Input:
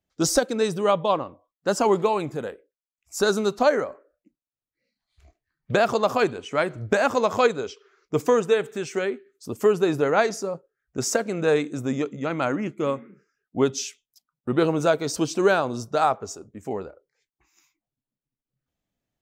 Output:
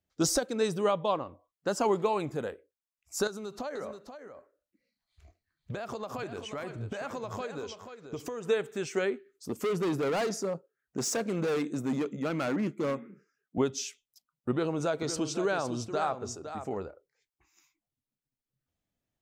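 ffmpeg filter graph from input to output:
-filter_complex "[0:a]asettb=1/sr,asplit=3[a][b][c];[a]atrim=end=3.274[d];[b]atrim=start=3.27:end=8.47,asetpts=PTS-STARTPTS,afade=t=in:d=0.004:c=qsin,afade=t=out:st=5.196:d=0.004:c=qsin,acompressor=threshold=-29dB:ratio=16:attack=3.2:release=140:knee=1:detection=peak,aecho=1:1:482:0.335,atrim=end_sample=229320[e];[c]atrim=start=8.466[f];[d][e]acrossfade=d=0.004:c1=hsin:c2=qsin[g];[g][f]acrossfade=d=0.004:c1=qsin:c2=hsin,asettb=1/sr,asplit=3[h][i][j];[h]atrim=end=9.494[k];[i]atrim=start=9.49:end=13.58,asetpts=PTS-STARTPTS,afade=t=in:d=0.004:c=qsin,afade=t=out:st=4.086:d=0.004:c=qsin,volume=24dB,asoftclip=hard,volume=-24dB,lowshelf=f=110:t=q:w=1.5:g=-13[l];[j]atrim=start=13.576[m];[k][l]acrossfade=d=0.004:c1=hsin:c2=qsin[n];[n][m]acrossfade=d=0.004:c1=qsin:c2=hsin,asettb=1/sr,asplit=3[o][p][q];[o]atrim=end=14.514[r];[p]atrim=start=14.51:end=16.77,asetpts=PTS-STARTPTS,afade=t=in:d=0.004:c=qsin,afade=t=out:st=2.256:d=0.004:c=qsin,lowpass=9.5k,acompressor=threshold=-26dB:ratio=2:attack=3.2:release=140:knee=1:detection=peak,aecho=1:1:510:0.316,atrim=end_sample=99666[s];[q]atrim=start=16.766[t];[r][s]acrossfade=d=0.004:c1=hsin:c2=qsin[u];[u][t]acrossfade=d=0.004:c1=qsin:c2=hsin,equalizer=f=88:w=6.3:g=6.5,alimiter=limit=-13dB:level=0:latency=1:release=345,volume=-3.5dB"

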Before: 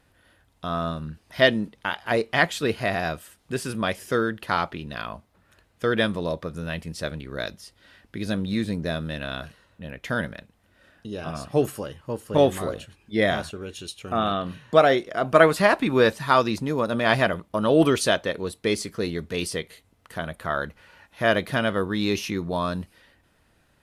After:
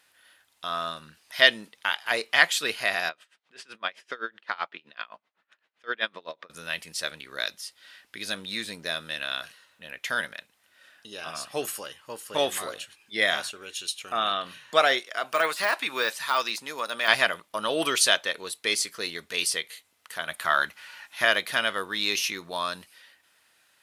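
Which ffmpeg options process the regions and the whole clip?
-filter_complex "[0:a]asettb=1/sr,asplit=3[a][b][c];[a]atrim=end=3.094[d];[b]atrim=start=3.09:end=6.5,asetpts=PTS-STARTPTS,afade=t=in:d=0.004:c=qsin,afade=t=out:st=3.406:d=0.004:c=qsin,highpass=200,lowpass=3.1k,aeval=exprs='val(0)*pow(10,-24*(0.5-0.5*cos(2*PI*7.8*n/s))/20)':c=same[e];[c]atrim=start=6.496[f];[d][e]acrossfade=d=0.004:c1=hsin:c2=qsin[g];[g][f]acrossfade=d=0.004:c1=qsin:c2=hsin,asettb=1/sr,asplit=3[h][i][j];[h]atrim=end=14.994[k];[i]atrim=start=14.99:end=17.08,asetpts=PTS-STARTPTS,afade=t=in:d=0.004:c=qsin,afade=t=out:st=2.086:d=0.004:c=qsin,deesser=0.8,highpass=120,lowshelf=f=420:g=-8[l];[j]atrim=start=17.076[m];[k][l]acrossfade=d=0.004:c1=hsin:c2=qsin[n];[n][m]acrossfade=d=0.004:c1=qsin:c2=hsin,asettb=1/sr,asplit=3[o][p][q];[o]atrim=end=20.284[r];[p]atrim=start=20.28:end=21.25,asetpts=PTS-STARTPTS,afade=t=in:d=0.004:c=qsin,afade=t=out:st=0.966:d=0.004:c=qsin,equalizer=f=490:t=o:w=0.28:g=-10,acontrast=25[s];[q]atrim=start=21.246[t];[r][s]acrossfade=d=0.004:c1=hsin:c2=qsin[u];[u][t]acrossfade=d=0.004:c1=qsin:c2=hsin,highpass=f=630:p=1,tiltshelf=f=1.1k:g=-7"

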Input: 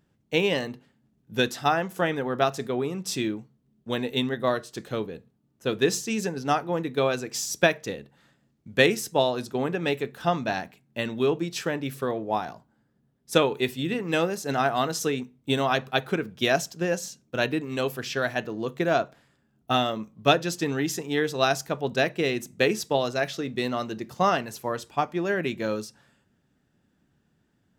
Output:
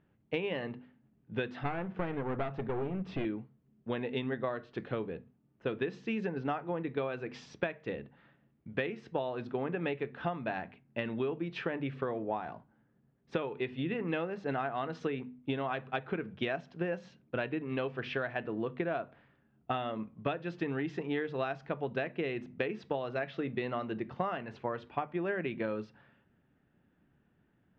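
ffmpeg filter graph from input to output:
-filter_complex "[0:a]asettb=1/sr,asplit=3[a][b][c];[a]atrim=end=1.634[d];[b]atrim=start=1.63:end=3.25,asetpts=PTS-STARTPTS,afade=t=in:d=0.004:c=qsin,afade=t=out:st=1.616:d=0.004:c=qsin,lowpass=f=2.5k:p=1,lowshelf=f=150:g=10.5,aeval=exprs='clip(val(0),-1,0.0266)':c=same[e];[c]atrim=start=3.246[f];[d][e]acrossfade=d=0.004:c1=hsin:c2=qsin[g];[g][f]acrossfade=d=0.004:c1=qsin:c2=hsin,lowpass=f=2.8k:w=0.5412,lowpass=f=2.8k:w=1.3066,bandreject=f=50:t=h:w=6,bandreject=f=100:t=h:w=6,bandreject=f=150:t=h:w=6,bandreject=f=200:t=h:w=6,bandreject=f=250:t=h:w=6,acompressor=threshold=-29dB:ratio=12,volume=-1dB"

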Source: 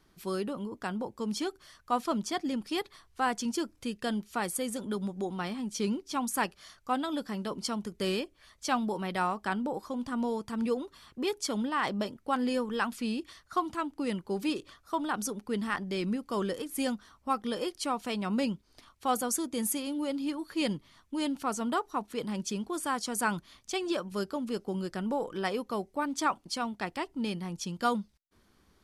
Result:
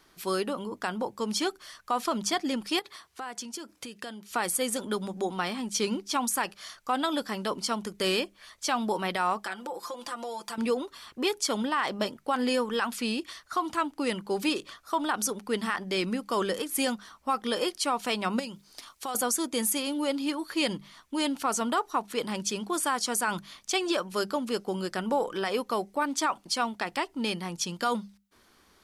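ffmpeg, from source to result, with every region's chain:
-filter_complex "[0:a]asettb=1/sr,asplit=3[a][b][c];[a]atrim=end=2.794[d];[b]atrim=start=2.79:end=4.3,asetpts=PTS-STARTPTS,afade=t=in:d=0.004:c=qsin,afade=t=out:st=1.506:d=0.004:c=qsin,highpass=83,acompressor=threshold=-40dB:ratio=12:attack=3.2:release=140:knee=1:detection=peak[e];[c]atrim=start=4.296[f];[d][e]acrossfade=d=0.004:c1=hsin:c2=qsin[g];[g][f]acrossfade=d=0.004:c1=qsin:c2=hsin,asettb=1/sr,asplit=3[h][i][j];[h]atrim=end=9.444[k];[i]atrim=start=9.44:end=10.58,asetpts=PTS-STARTPTS,afade=t=in:d=0.004:c=qsin,afade=t=out:st=1.136:d=0.004:c=qsin,bass=f=250:g=-14,treble=f=4k:g=3,aecho=1:1:5.8:0.87,atrim=end_sample=50274,acompressor=threshold=-41dB:ratio=3:attack=3.2:release=140:knee=1:detection=peak[l];[j]atrim=start=10.576[m];[k][l]acrossfade=d=0.004:c1=hsin:c2=qsin[n];[n][m]acrossfade=d=0.004:c1=qsin:c2=hsin,asettb=1/sr,asplit=3[o][p][q];[o]atrim=end=18.394[r];[p]atrim=start=18.39:end=19.15,asetpts=PTS-STARTPTS,afade=t=in:d=0.004:c=qsin,afade=t=out:st=0.756:d=0.004:c=qsin,bass=f=250:g=-2,treble=f=4k:g=7,acompressor=threshold=-37dB:ratio=6:attack=3.2:release=140:knee=1:detection=peak[s];[q]atrim=start=19.146[t];[r][s]acrossfade=d=0.004:c1=hsin:c2=qsin[u];[u][t]acrossfade=d=0.004:c1=qsin:c2=hsin,lowshelf=f=320:g=-11.5,alimiter=level_in=1.5dB:limit=-24dB:level=0:latency=1:release=61,volume=-1.5dB,bandreject=f=50:t=h:w=6,bandreject=f=100:t=h:w=6,bandreject=f=150:t=h:w=6,bandreject=f=200:t=h:w=6,volume=8.5dB"

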